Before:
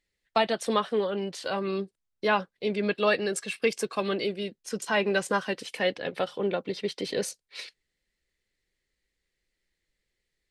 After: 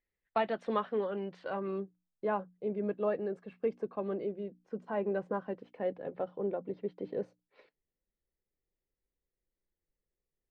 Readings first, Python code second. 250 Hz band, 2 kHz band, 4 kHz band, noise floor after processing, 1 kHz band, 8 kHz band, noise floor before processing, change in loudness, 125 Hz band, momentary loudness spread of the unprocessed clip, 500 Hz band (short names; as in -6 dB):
-6.0 dB, -16.0 dB, under -20 dB, under -85 dBFS, -7.5 dB, under -35 dB, -82 dBFS, -7.5 dB, -6.5 dB, 10 LU, -6.0 dB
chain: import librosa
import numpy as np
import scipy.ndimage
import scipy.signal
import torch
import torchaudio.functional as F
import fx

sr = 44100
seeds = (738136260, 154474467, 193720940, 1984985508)

y = fx.hum_notches(x, sr, base_hz=60, count=5)
y = fx.filter_sweep_lowpass(y, sr, from_hz=1800.0, to_hz=800.0, start_s=1.21, end_s=2.55, q=0.8)
y = y * 10.0 ** (-6.0 / 20.0)